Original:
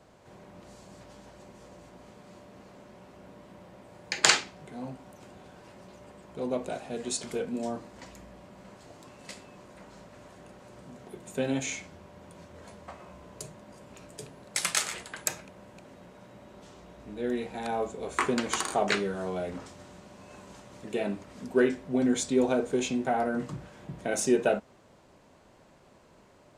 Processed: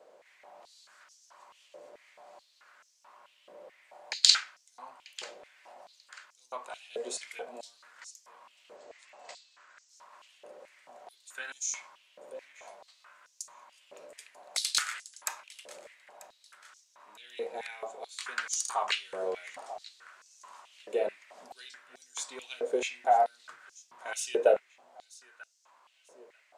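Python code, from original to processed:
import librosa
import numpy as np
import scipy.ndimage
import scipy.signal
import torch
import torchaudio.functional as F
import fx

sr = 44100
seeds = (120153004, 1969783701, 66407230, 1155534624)

y = fx.brickwall_lowpass(x, sr, high_hz=8300.0, at=(8.76, 9.89))
y = fx.echo_feedback(y, sr, ms=940, feedback_pct=32, wet_db=-19.0)
y = fx.filter_held_highpass(y, sr, hz=4.6, low_hz=510.0, high_hz=5800.0)
y = F.gain(torch.from_numpy(y), -5.5).numpy()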